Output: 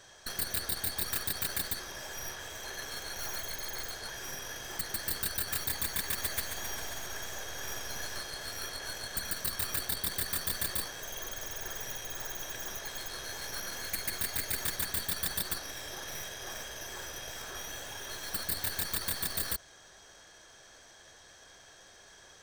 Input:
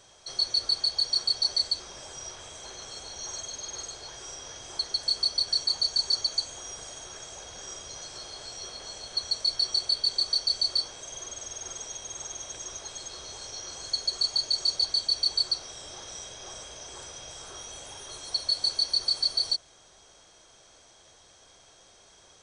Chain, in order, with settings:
stylus tracing distortion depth 0.48 ms
brickwall limiter −25 dBFS, peak gain reduction 11 dB
parametric band 1,700 Hz +12 dB 0.26 octaves
0:06.06–0:08.20: feedback echo with a swinging delay time 133 ms, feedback 76%, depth 66 cents, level −9 dB

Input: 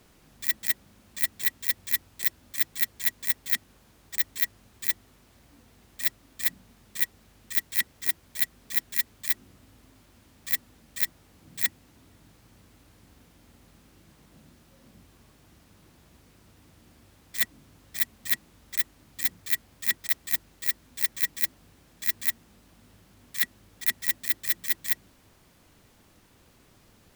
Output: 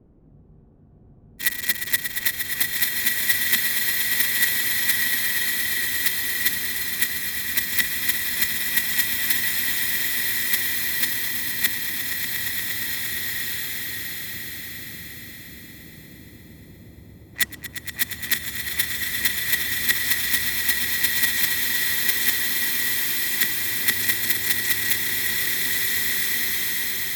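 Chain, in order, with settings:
low-pass that shuts in the quiet parts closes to 350 Hz, open at −26.5 dBFS
echo that builds up and dies away 117 ms, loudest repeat 5, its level −11 dB
frozen spectrum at 0:00.34, 1.06 s
slow-attack reverb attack 1,900 ms, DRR −1.5 dB
level +7.5 dB

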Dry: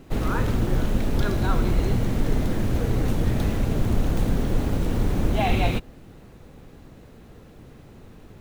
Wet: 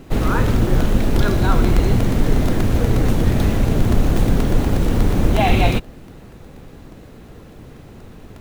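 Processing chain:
regular buffer underruns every 0.12 s, samples 128, repeat, from 0:00.56
level +6.5 dB

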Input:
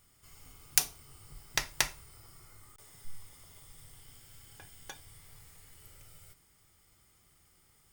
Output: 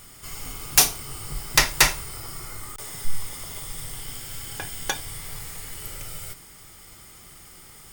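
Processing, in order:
parametric band 79 Hz −5.5 dB 1.2 octaves
in parallel at −6 dB: sine wavefolder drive 19 dB, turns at −4 dBFS
on the sum: level +1.5 dB

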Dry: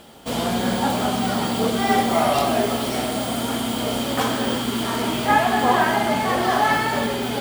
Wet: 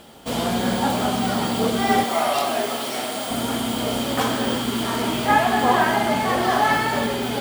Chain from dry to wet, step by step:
0:02.04–0:03.31: high-pass filter 540 Hz 6 dB per octave

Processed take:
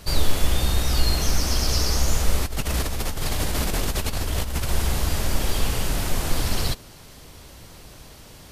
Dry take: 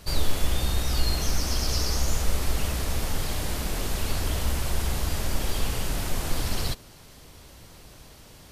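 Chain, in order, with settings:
0:02.46–0:04.70: compressor whose output falls as the input rises −28 dBFS, ratio −1
level +4 dB

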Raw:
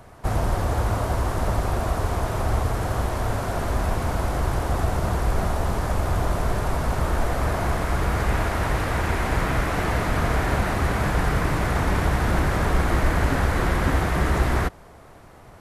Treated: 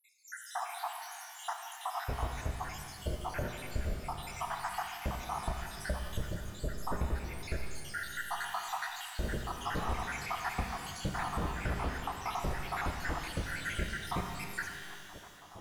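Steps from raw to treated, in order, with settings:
time-frequency cells dropped at random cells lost 84%
downward compressor, threshold −33 dBFS, peak gain reduction 14 dB
reverb with rising layers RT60 2.2 s, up +12 semitones, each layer −8 dB, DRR 3 dB

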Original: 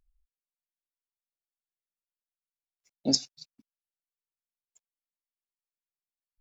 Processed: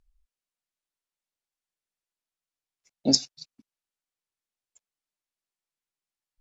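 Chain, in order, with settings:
low-pass filter 10,000 Hz
level +4 dB

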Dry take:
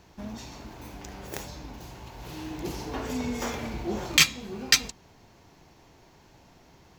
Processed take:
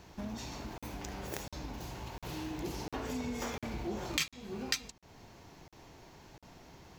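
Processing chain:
downward compressor 2.5 to 1, threshold −39 dBFS, peak gain reduction 16.5 dB
regular buffer underruns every 0.70 s, samples 2,048, zero, from 0:00.78
level +1 dB

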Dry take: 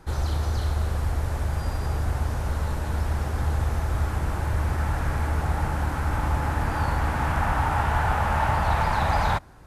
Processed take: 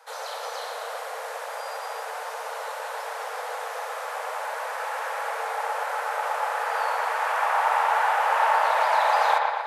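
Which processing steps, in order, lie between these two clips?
Chebyshev high-pass filter 450 Hz, order 10
delay with a low-pass on its return 118 ms, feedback 63%, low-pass 3,200 Hz, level −3 dB
level +2 dB

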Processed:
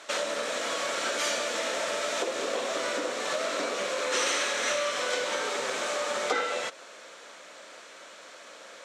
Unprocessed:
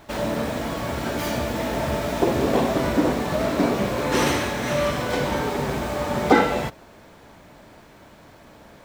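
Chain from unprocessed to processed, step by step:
loudspeaker in its box 290–7,500 Hz, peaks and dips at 520 Hz +9 dB, 860 Hz −5 dB, 1,300 Hz +5 dB, 4,900 Hz −4 dB
downward compressor 3 to 1, threshold −27 dBFS, peak gain reduction 13.5 dB
spectral tilt +4.5 dB per octave

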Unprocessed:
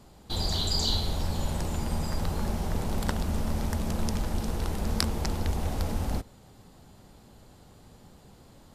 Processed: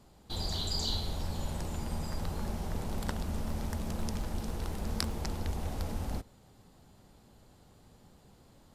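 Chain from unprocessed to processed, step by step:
0:03.46–0:05.18: surface crackle 76 per second −39 dBFS
level −6 dB

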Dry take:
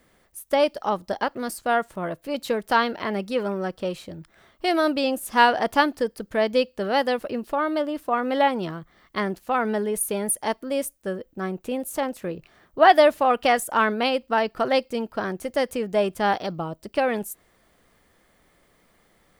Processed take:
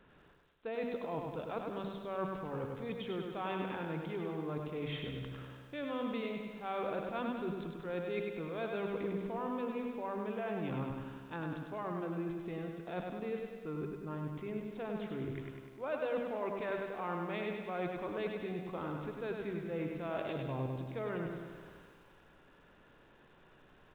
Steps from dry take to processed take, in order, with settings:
mains-hum notches 60/120/180/240/300 Hz
transient designer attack −2 dB, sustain +5 dB
reversed playback
downward compressor 5 to 1, threshold −37 dBFS, peak gain reduction 23 dB
reversed playback
speed change −19%
on a send: repeating echo 100 ms, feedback 58%, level −4.5 dB
on the sum: downsampling to 8,000 Hz
feedback echo at a low word length 85 ms, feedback 80%, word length 10 bits, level −14 dB
level −2 dB

